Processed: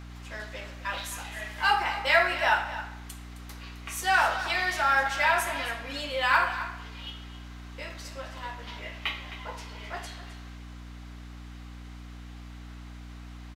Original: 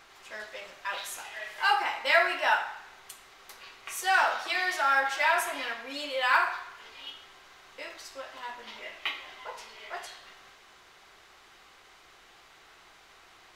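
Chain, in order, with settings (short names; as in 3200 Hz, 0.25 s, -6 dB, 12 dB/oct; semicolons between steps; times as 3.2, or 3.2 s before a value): hum 60 Hz, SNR 12 dB; echo 0.263 s -13.5 dB; gain +1 dB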